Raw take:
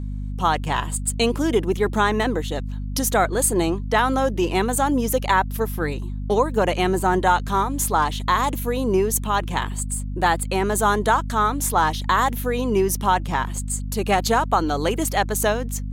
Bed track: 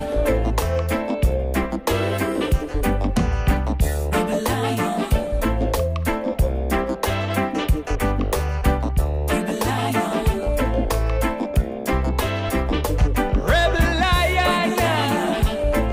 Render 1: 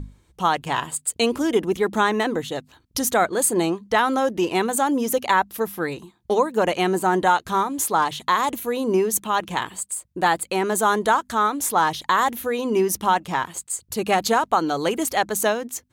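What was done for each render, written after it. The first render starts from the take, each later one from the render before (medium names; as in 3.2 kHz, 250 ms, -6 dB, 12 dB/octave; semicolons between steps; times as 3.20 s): hum notches 50/100/150/200/250 Hz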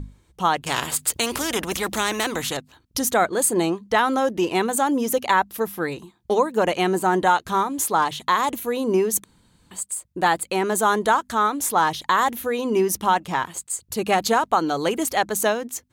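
0.66–2.57 s: spectrum-flattening compressor 2:1; 9.24–9.71 s: room tone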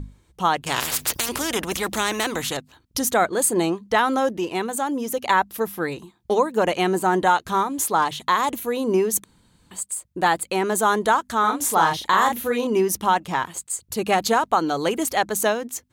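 0.80–1.29 s: spectrum-flattening compressor 4:1; 4.37–5.23 s: gain -4 dB; 11.40–12.67 s: doubling 37 ms -4 dB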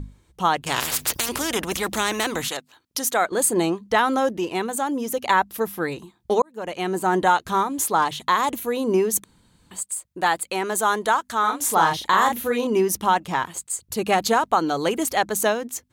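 2.48–3.32 s: high-pass 570 Hz 6 dB/octave; 6.42–7.17 s: fade in; 9.83–11.68 s: bass shelf 430 Hz -7.5 dB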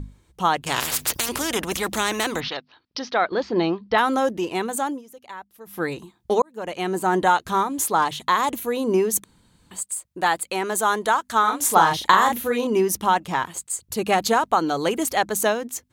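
2.40–3.98 s: steep low-pass 5.4 kHz 72 dB/octave; 4.87–5.80 s: dip -19 dB, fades 0.15 s; 11.30–12.38 s: transient shaper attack +6 dB, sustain +2 dB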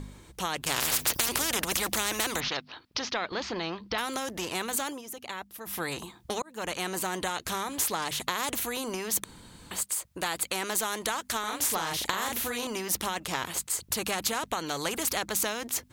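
compression, threshold -21 dBFS, peak gain reduction 10.5 dB; spectrum-flattening compressor 2:1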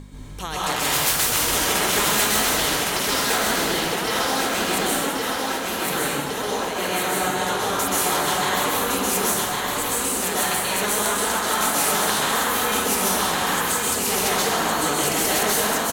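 feedback delay 1111 ms, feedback 53%, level -3 dB; plate-style reverb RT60 1.8 s, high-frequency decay 0.6×, pre-delay 115 ms, DRR -7.5 dB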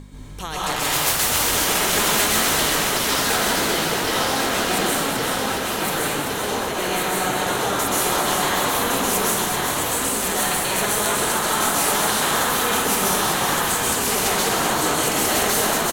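frequency-shifting echo 384 ms, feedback 52%, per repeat -59 Hz, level -6 dB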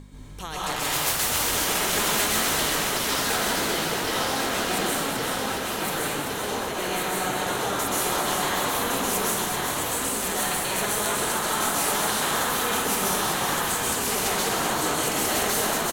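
trim -4.5 dB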